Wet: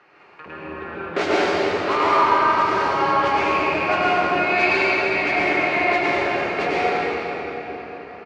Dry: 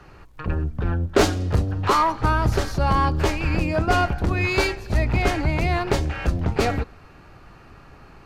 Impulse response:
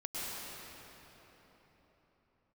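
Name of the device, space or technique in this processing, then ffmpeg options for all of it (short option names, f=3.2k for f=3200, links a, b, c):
station announcement: -filter_complex "[0:a]highpass=380,lowpass=4.1k,equalizer=f=2.2k:t=o:w=0.56:g=6.5,aecho=1:1:75.8|259.5:0.282|0.316[a];[1:a]atrim=start_sample=2205[b];[a][b]afir=irnorm=-1:irlink=0"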